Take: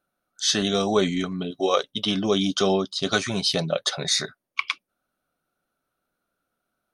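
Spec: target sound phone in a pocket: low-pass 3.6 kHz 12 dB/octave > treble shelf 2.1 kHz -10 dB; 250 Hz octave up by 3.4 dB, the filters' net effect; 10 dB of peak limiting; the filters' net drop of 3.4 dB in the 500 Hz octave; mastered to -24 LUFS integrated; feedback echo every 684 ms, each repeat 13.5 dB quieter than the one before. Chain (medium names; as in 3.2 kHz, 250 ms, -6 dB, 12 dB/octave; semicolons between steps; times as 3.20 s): peaking EQ 250 Hz +6.5 dB; peaking EQ 500 Hz -6.5 dB; peak limiter -16.5 dBFS; low-pass 3.6 kHz 12 dB/octave; treble shelf 2.1 kHz -10 dB; feedback delay 684 ms, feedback 21%, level -13.5 dB; trim +4.5 dB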